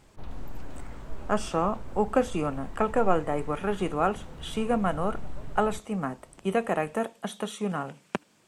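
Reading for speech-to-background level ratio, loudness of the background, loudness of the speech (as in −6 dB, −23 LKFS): 15.5 dB, −45.0 LKFS, −29.5 LKFS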